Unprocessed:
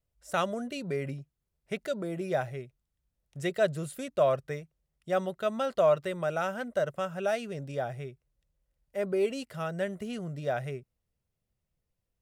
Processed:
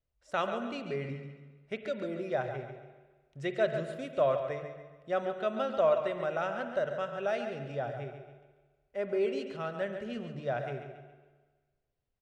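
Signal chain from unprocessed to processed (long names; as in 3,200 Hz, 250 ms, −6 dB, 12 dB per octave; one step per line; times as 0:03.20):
low-pass filter 4,200 Hz 12 dB per octave
parametric band 180 Hz −6 dB 0.37 octaves
mains-hum notches 50/100/150 Hz
repeating echo 139 ms, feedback 36%, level −9 dB
on a send at −9.5 dB: convolution reverb RT60 1.4 s, pre-delay 41 ms
on the sum: level −2.5 dB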